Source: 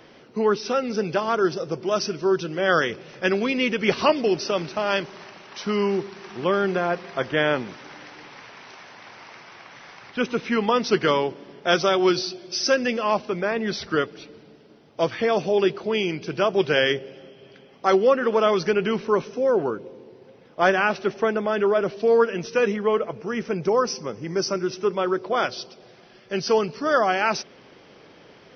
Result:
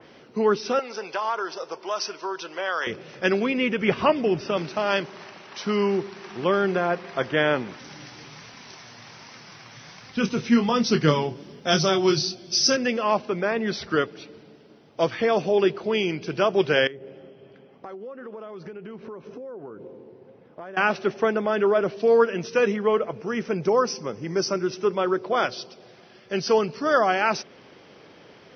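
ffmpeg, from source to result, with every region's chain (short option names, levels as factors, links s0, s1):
-filter_complex "[0:a]asettb=1/sr,asplit=3[s0][s1][s2];[s0]atrim=end=0.794[s3];[s1]atrim=start=0.79:end=2.87,asetpts=PTS-STARTPTS,afade=t=in:d=0.004:c=qsin,afade=t=out:st=2.076:d=0.004:c=qsin,equalizer=f=960:t=o:w=0.45:g=8,acompressor=threshold=0.112:ratio=6:attack=3.2:release=140:knee=1:detection=peak,highpass=620[s4];[s2]atrim=start=2.866[s5];[s3][s4]acrossfade=d=0.004:c1=hsin:c2=qsin[s6];[s6][s5]acrossfade=d=0.004:c1=qsin:c2=hsin,asettb=1/sr,asplit=3[s7][s8][s9];[s7]atrim=end=3.404[s10];[s8]atrim=start=3.4:end=4.57,asetpts=PTS-STARTPTS,afade=t=in:d=0.004:c=qsin,afade=t=out:st=1.166:d=0.004:c=qsin,acrossover=split=3700[s11][s12];[s12]acompressor=threshold=0.00398:ratio=4:attack=1:release=60[s13];[s11][s13]amix=inputs=2:normalize=0,asubboost=boost=6:cutoff=200,bandreject=f=4200:w=7.1[s14];[s9]atrim=start=4.566[s15];[s10][s14]acrossfade=d=0.004:c1=hsin:c2=qsin[s16];[s16][s15]acrossfade=d=0.004:c1=qsin:c2=hsin,asettb=1/sr,asplit=3[s17][s18][s19];[s17]atrim=end=7.794[s20];[s18]atrim=start=7.79:end=12.77,asetpts=PTS-STARTPTS,afade=t=in:d=0.004:c=qsin,afade=t=out:st=4.976:d=0.004:c=qsin,bass=f=250:g=13,treble=f=4000:g=13,flanger=delay=3.8:depth=4.8:regen=49:speed=1.3:shape=sinusoidal,asplit=2[s21][s22];[s22]adelay=26,volume=0.355[s23];[s21][s23]amix=inputs=2:normalize=0,atrim=end_sample=219618[s24];[s19]atrim=start=12.766[s25];[s20][s24]acrossfade=d=0.004:c1=hsin:c2=qsin[s26];[s26][s25]acrossfade=d=0.004:c1=qsin:c2=hsin,asettb=1/sr,asplit=3[s27][s28][s29];[s27]atrim=end=16.874[s30];[s28]atrim=start=16.87:end=20.77,asetpts=PTS-STARTPTS,afade=t=in:d=0.004:c=qsin,afade=t=out:st=3.896:d=0.004:c=qsin,lowpass=f=1100:p=1,acompressor=threshold=0.0178:ratio=10:attack=3.2:release=140:knee=1:detection=peak[s31];[s29]atrim=start=20.766[s32];[s30][s31]acrossfade=d=0.004:c1=hsin:c2=qsin[s33];[s33][s32]acrossfade=d=0.004:c1=qsin:c2=hsin,highpass=50,adynamicequalizer=threshold=0.0158:dfrequency=3000:dqfactor=0.7:tfrequency=3000:tqfactor=0.7:attack=5:release=100:ratio=0.375:range=2:mode=cutabove:tftype=highshelf"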